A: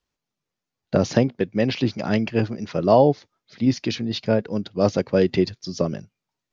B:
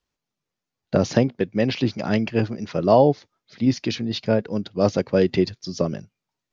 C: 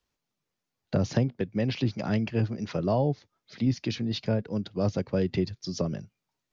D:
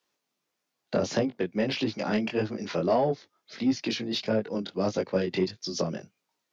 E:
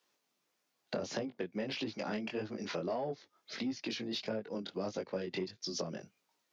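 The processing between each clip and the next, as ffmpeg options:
-af anull
-filter_complex "[0:a]acrossover=split=160[a][b];[b]acompressor=threshold=-34dB:ratio=2[c];[a][c]amix=inputs=2:normalize=0"
-filter_complex "[0:a]highpass=270,flanger=delay=18.5:depth=5.1:speed=1.6,asplit=2[a][b];[b]asoftclip=type=tanh:threshold=-28dB,volume=-4dB[c];[a][c]amix=inputs=2:normalize=0,volume=3.5dB"
-af "lowshelf=f=130:g=-6,acompressor=threshold=-39dB:ratio=3,volume=1dB"

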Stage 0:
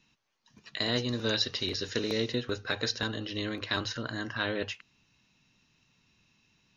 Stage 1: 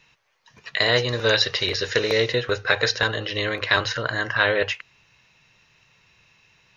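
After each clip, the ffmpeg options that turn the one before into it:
-af "equalizer=f=125:t=o:w=1:g=3,equalizer=f=250:t=o:w=1:g=-12,equalizer=f=500:t=o:w=1:g=8,equalizer=f=1k:t=o:w=1:g=3,equalizer=f=2k:t=o:w=1:g=8,volume=6.5dB"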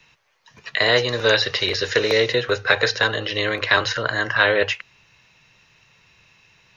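-filter_complex "[0:a]acrossover=split=210|420|3100[a][b][c][d];[a]asoftclip=type=tanh:threshold=-35dB[e];[d]alimiter=limit=-18.5dB:level=0:latency=1:release=104[f];[e][b][c][f]amix=inputs=4:normalize=0,volume=3dB"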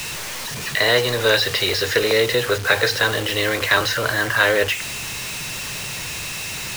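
-filter_complex "[0:a]aeval=exprs='val(0)+0.5*0.0708*sgn(val(0))':c=same,acrossover=split=820[a][b];[b]acrusher=bits=4:mix=0:aa=0.000001[c];[a][c]amix=inputs=2:normalize=0,volume=-1dB"

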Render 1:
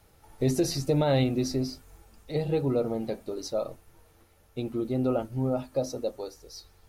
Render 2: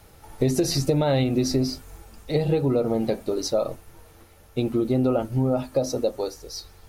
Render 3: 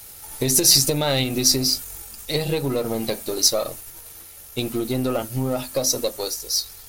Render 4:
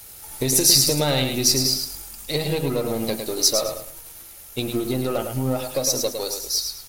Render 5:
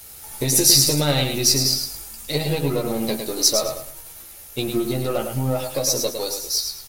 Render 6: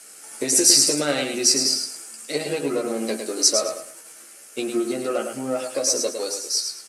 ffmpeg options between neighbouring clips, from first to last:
-af "acompressor=threshold=-27dB:ratio=6,volume=9dB"
-af "aeval=exprs='if(lt(val(0),0),0.708*val(0),val(0))':c=same,crystalizer=i=8.5:c=0,volume=-1.5dB"
-af "aecho=1:1:107|214|321:0.473|0.123|0.032,volume=-1dB"
-filter_complex "[0:a]asplit=2[a][b];[b]adelay=14,volume=-5.5dB[c];[a][c]amix=inputs=2:normalize=0"
-af "highpass=f=230:w=0.5412,highpass=f=230:w=1.3066,equalizer=f=890:t=q:w=4:g=-8,equalizer=f=1.5k:t=q:w=4:g=4,equalizer=f=3.7k:t=q:w=4:g=-9,equalizer=f=8.1k:t=q:w=4:g=7,lowpass=f=9.9k:w=0.5412,lowpass=f=9.9k:w=1.3066"

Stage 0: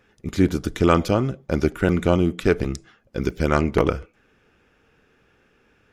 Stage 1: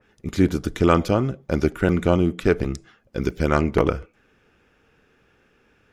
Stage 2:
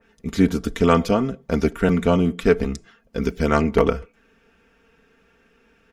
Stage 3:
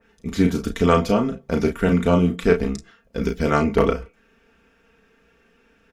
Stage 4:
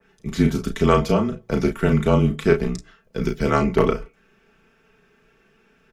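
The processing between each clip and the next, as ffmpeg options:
-af "adynamicequalizer=threshold=0.01:dfrequency=2400:dqfactor=0.7:tfrequency=2400:tqfactor=0.7:attack=5:release=100:ratio=0.375:range=1.5:mode=cutabove:tftype=highshelf"
-af "aecho=1:1:4.4:0.65"
-af "aecho=1:1:34|49:0.501|0.126,volume=-1dB"
-af "afreqshift=-27"

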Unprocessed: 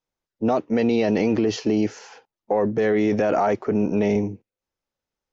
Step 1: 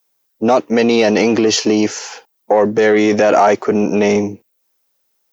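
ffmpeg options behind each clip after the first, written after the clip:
-af "acontrast=84,aemphasis=mode=production:type=bsi,volume=4dB"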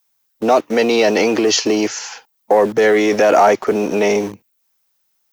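-filter_complex "[0:a]acrossover=split=290|620[a][b][c];[a]acompressor=threshold=-27dB:ratio=6[d];[b]aeval=exprs='val(0)*gte(abs(val(0)),0.0299)':c=same[e];[d][e][c]amix=inputs=3:normalize=0"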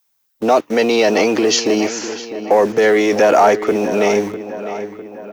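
-filter_complex "[0:a]asplit=2[a][b];[b]adelay=652,lowpass=f=3.4k:p=1,volume=-12dB,asplit=2[c][d];[d]adelay=652,lowpass=f=3.4k:p=1,volume=0.54,asplit=2[e][f];[f]adelay=652,lowpass=f=3.4k:p=1,volume=0.54,asplit=2[g][h];[h]adelay=652,lowpass=f=3.4k:p=1,volume=0.54,asplit=2[i][j];[j]adelay=652,lowpass=f=3.4k:p=1,volume=0.54,asplit=2[k][l];[l]adelay=652,lowpass=f=3.4k:p=1,volume=0.54[m];[a][c][e][g][i][k][m]amix=inputs=7:normalize=0"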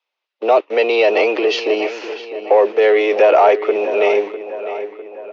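-af "highpass=f=380:w=0.5412,highpass=f=380:w=1.3066,equalizer=f=400:t=q:w=4:g=4,equalizer=f=580:t=q:w=4:g=4,equalizer=f=1.6k:t=q:w=4:g=-5,equalizer=f=2.6k:t=q:w=4:g=6,lowpass=f=3.8k:w=0.5412,lowpass=f=3.8k:w=1.3066,volume=-1.5dB"

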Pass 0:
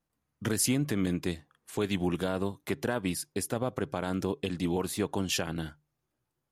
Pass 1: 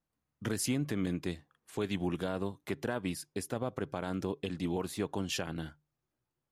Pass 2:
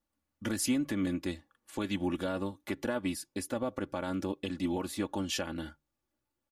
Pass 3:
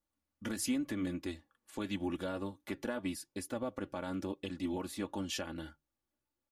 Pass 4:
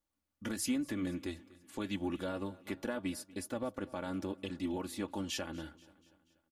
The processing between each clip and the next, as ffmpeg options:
-af "highshelf=f=7.4k:g=-6,volume=-4dB"
-af "aecho=1:1:3.5:0.69"
-af "flanger=delay=1.9:depth=2.9:regen=-78:speed=0.89:shape=triangular"
-af "aecho=1:1:241|482|723|964:0.0891|0.0472|0.025|0.0133"

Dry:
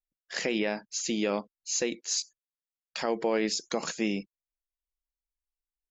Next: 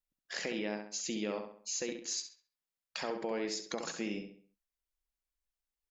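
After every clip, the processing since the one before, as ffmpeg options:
-filter_complex "[0:a]acompressor=threshold=-41dB:ratio=2,asplit=2[a][b];[b]adelay=67,lowpass=f=3.8k:p=1,volume=-6dB,asplit=2[c][d];[d]adelay=67,lowpass=f=3.8k:p=1,volume=0.42,asplit=2[e][f];[f]adelay=67,lowpass=f=3.8k:p=1,volume=0.42,asplit=2[g][h];[h]adelay=67,lowpass=f=3.8k:p=1,volume=0.42,asplit=2[i][j];[j]adelay=67,lowpass=f=3.8k:p=1,volume=0.42[k];[c][e][g][i][k]amix=inputs=5:normalize=0[l];[a][l]amix=inputs=2:normalize=0"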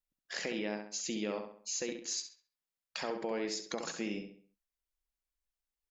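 -af anull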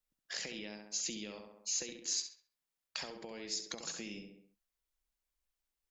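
-filter_complex "[0:a]acrossover=split=130|3000[a][b][c];[b]acompressor=threshold=-48dB:ratio=6[d];[a][d][c]amix=inputs=3:normalize=0,volume=2dB"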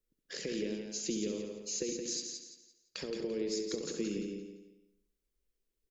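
-filter_complex "[0:a]lowshelf=f=570:t=q:w=3:g=9.5,asplit=2[a][b];[b]aecho=0:1:171|342|513|684:0.501|0.16|0.0513|0.0164[c];[a][c]amix=inputs=2:normalize=0,volume=-2.5dB"

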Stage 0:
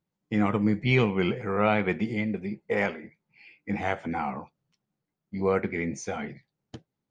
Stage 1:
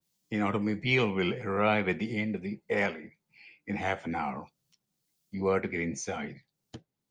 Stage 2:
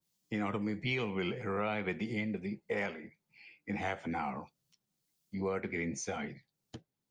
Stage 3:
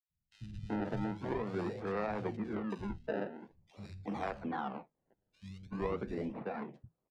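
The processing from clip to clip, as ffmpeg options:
-filter_complex "[0:a]acrossover=split=290|490|3500[a][b][c][d];[a]alimiter=level_in=1.5dB:limit=-24dB:level=0:latency=1,volume=-1.5dB[e];[d]acompressor=mode=upward:threshold=-58dB:ratio=2.5[f];[e][b][c][f]amix=inputs=4:normalize=0,adynamicequalizer=threshold=0.00794:dfrequency=2500:dqfactor=0.7:tfrequency=2500:tqfactor=0.7:attack=5:release=100:ratio=0.375:range=2.5:mode=boostabove:tftype=highshelf,volume=-2.5dB"
-af "acompressor=threshold=-28dB:ratio=6,volume=-2.5dB"
-filter_complex "[0:a]acrusher=samples=27:mix=1:aa=0.000001:lfo=1:lforange=27:lforate=0.45,acrossover=split=150|3100[a][b][c];[a]adelay=90[d];[b]adelay=380[e];[d][e][c]amix=inputs=3:normalize=0,adynamicsmooth=sensitivity=1.5:basefreq=1.9k"

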